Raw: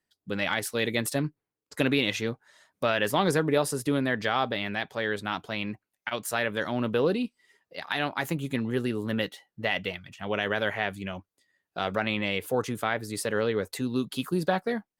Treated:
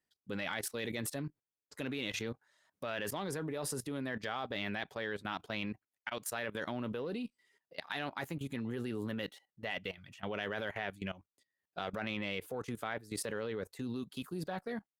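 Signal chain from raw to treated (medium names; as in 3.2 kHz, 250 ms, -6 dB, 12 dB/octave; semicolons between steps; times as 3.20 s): Chebyshev shaper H 5 -31 dB, 8 -44 dB, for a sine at -11 dBFS; level held to a coarse grid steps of 17 dB; trim -4 dB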